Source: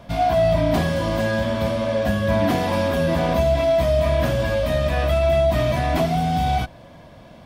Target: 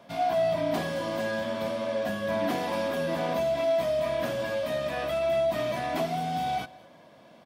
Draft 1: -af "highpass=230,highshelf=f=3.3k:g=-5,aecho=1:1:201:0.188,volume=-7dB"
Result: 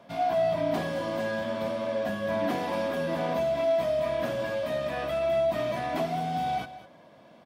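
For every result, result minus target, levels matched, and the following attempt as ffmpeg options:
echo-to-direct +7.5 dB; 8000 Hz band -4.0 dB
-af "highpass=230,highshelf=f=3.3k:g=-5,aecho=1:1:201:0.0794,volume=-7dB"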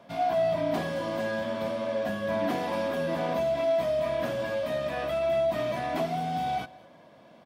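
8000 Hz band -4.0 dB
-af "highpass=230,aecho=1:1:201:0.0794,volume=-7dB"

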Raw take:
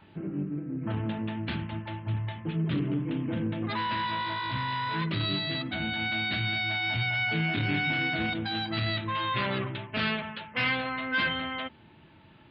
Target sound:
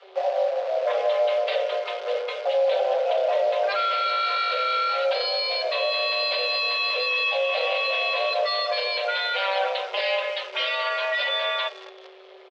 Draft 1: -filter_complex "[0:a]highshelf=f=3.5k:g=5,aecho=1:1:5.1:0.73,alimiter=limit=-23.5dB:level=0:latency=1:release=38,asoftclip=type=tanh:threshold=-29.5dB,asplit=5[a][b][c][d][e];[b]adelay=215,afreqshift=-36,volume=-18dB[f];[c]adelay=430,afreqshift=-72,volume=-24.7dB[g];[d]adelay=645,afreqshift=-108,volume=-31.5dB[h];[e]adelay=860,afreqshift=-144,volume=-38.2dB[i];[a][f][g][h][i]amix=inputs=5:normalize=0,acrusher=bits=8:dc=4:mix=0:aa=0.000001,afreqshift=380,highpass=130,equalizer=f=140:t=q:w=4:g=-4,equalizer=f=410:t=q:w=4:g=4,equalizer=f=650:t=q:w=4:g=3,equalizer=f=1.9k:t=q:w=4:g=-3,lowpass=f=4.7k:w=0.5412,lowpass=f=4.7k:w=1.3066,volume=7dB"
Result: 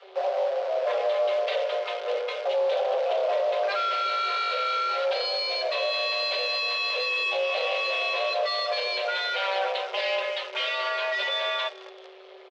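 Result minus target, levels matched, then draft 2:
soft clip: distortion +17 dB
-filter_complex "[0:a]highshelf=f=3.5k:g=5,aecho=1:1:5.1:0.73,alimiter=limit=-23.5dB:level=0:latency=1:release=38,asoftclip=type=tanh:threshold=-18.5dB,asplit=5[a][b][c][d][e];[b]adelay=215,afreqshift=-36,volume=-18dB[f];[c]adelay=430,afreqshift=-72,volume=-24.7dB[g];[d]adelay=645,afreqshift=-108,volume=-31.5dB[h];[e]adelay=860,afreqshift=-144,volume=-38.2dB[i];[a][f][g][h][i]amix=inputs=5:normalize=0,acrusher=bits=8:dc=4:mix=0:aa=0.000001,afreqshift=380,highpass=130,equalizer=f=140:t=q:w=4:g=-4,equalizer=f=410:t=q:w=4:g=4,equalizer=f=650:t=q:w=4:g=3,equalizer=f=1.9k:t=q:w=4:g=-3,lowpass=f=4.7k:w=0.5412,lowpass=f=4.7k:w=1.3066,volume=7dB"

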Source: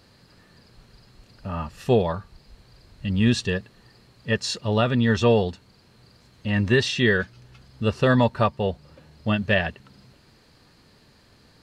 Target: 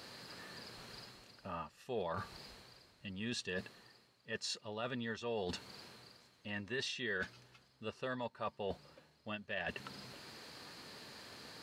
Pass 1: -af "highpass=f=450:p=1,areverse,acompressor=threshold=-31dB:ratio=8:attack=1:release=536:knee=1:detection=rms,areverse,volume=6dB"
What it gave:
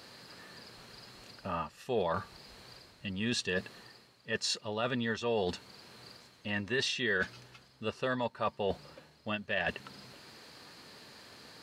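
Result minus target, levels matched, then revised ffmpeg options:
compressor: peak gain reduction -8 dB
-af "highpass=f=450:p=1,areverse,acompressor=threshold=-40dB:ratio=8:attack=1:release=536:knee=1:detection=rms,areverse,volume=6dB"

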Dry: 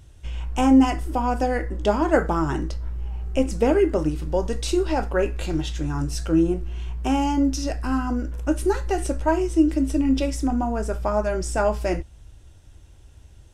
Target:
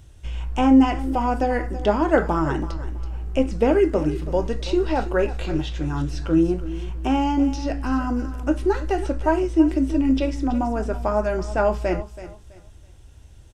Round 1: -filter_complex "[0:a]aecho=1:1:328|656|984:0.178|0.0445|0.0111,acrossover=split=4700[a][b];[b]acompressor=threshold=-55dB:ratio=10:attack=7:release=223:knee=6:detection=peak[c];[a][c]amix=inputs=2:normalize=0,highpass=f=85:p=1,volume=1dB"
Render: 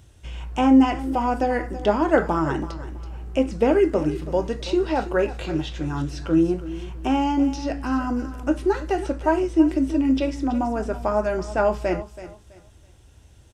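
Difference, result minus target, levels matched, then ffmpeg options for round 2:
125 Hz band -3.0 dB
-filter_complex "[0:a]aecho=1:1:328|656|984:0.178|0.0445|0.0111,acrossover=split=4700[a][b];[b]acompressor=threshold=-55dB:ratio=10:attack=7:release=223:knee=6:detection=peak[c];[a][c]amix=inputs=2:normalize=0,volume=1dB"

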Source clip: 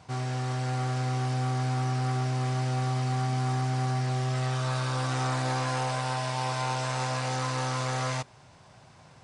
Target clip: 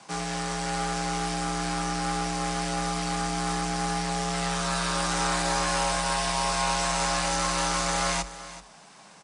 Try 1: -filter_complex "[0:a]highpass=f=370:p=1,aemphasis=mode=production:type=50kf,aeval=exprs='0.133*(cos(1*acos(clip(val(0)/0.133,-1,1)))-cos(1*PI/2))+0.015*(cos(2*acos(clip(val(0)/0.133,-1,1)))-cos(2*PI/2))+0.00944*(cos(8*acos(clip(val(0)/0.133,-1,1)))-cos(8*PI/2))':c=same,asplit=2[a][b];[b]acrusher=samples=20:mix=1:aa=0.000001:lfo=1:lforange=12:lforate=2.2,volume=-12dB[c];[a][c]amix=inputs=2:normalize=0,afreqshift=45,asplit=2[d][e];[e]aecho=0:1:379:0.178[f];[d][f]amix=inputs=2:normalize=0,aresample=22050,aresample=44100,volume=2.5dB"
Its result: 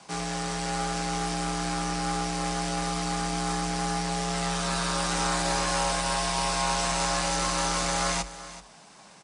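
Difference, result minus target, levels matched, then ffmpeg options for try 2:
decimation with a swept rate: distortion +7 dB
-filter_complex "[0:a]highpass=f=370:p=1,aemphasis=mode=production:type=50kf,aeval=exprs='0.133*(cos(1*acos(clip(val(0)/0.133,-1,1)))-cos(1*PI/2))+0.015*(cos(2*acos(clip(val(0)/0.133,-1,1)))-cos(2*PI/2))+0.00944*(cos(8*acos(clip(val(0)/0.133,-1,1)))-cos(8*PI/2))':c=same,asplit=2[a][b];[b]acrusher=samples=7:mix=1:aa=0.000001:lfo=1:lforange=4.2:lforate=2.2,volume=-12dB[c];[a][c]amix=inputs=2:normalize=0,afreqshift=45,asplit=2[d][e];[e]aecho=0:1:379:0.178[f];[d][f]amix=inputs=2:normalize=0,aresample=22050,aresample=44100,volume=2.5dB"

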